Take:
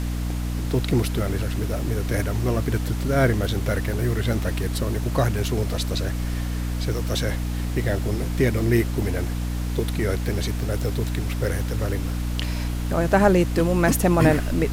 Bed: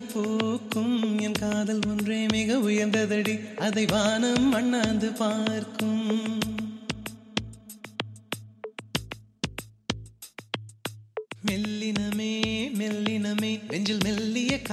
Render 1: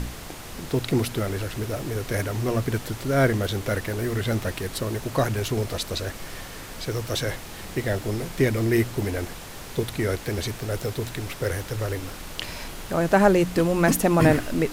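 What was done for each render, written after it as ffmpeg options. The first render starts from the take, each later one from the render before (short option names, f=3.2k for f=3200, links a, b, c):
-af "bandreject=f=60:t=h:w=4,bandreject=f=120:t=h:w=4,bandreject=f=180:t=h:w=4,bandreject=f=240:t=h:w=4,bandreject=f=300:t=h:w=4"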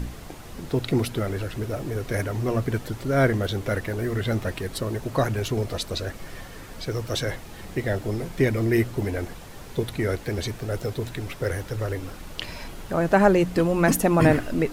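-af "afftdn=nr=7:nf=-39"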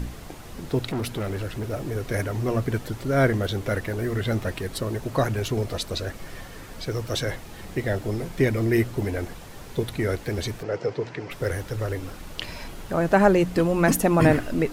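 -filter_complex "[0:a]asplit=3[a][b][c];[a]afade=t=out:st=0.85:d=0.02[d];[b]volume=25dB,asoftclip=hard,volume=-25dB,afade=t=in:st=0.85:d=0.02,afade=t=out:st=1.71:d=0.02[e];[c]afade=t=in:st=1.71:d=0.02[f];[d][e][f]amix=inputs=3:normalize=0,asplit=3[g][h][i];[g]afade=t=out:st=10.62:d=0.02[j];[h]highpass=f=130:w=0.5412,highpass=f=130:w=1.3066,equalizer=f=220:t=q:w=4:g=-6,equalizer=f=470:t=q:w=4:g=6,equalizer=f=910:t=q:w=4:g=4,equalizer=f=2k:t=q:w=4:g=3,equalizer=f=3.7k:t=q:w=4:g=-9,lowpass=f=5.5k:w=0.5412,lowpass=f=5.5k:w=1.3066,afade=t=in:st=10.62:d=0.02,afade=t=out:st=11.3:d=0.02[k];[i]afade=t=in:st=11.3:d=0.02[l];[j][k][l]amix=inputs=3:normalize=0"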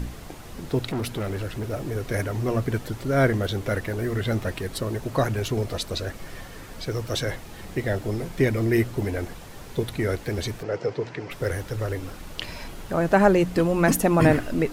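-af anull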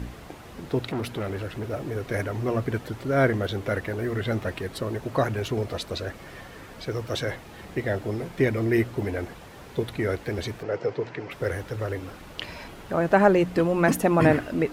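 -af "highpass=45,bass=f=250:g=-3,treble=f=4k:g=-7"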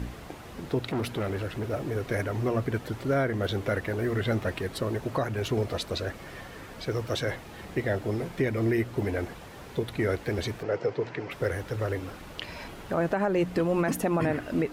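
-af "alimiter=limit=-16.5dB:level=0:latency=1:release=240"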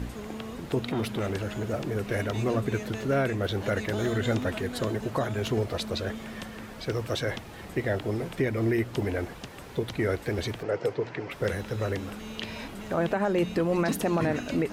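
-filter_complex "[1:a]volume=-13dB[a];[0:a][a]amix=inputs=2:normalize=0"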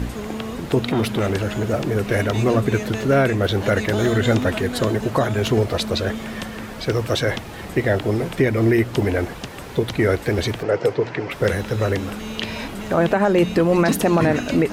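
-af "volume=9dB"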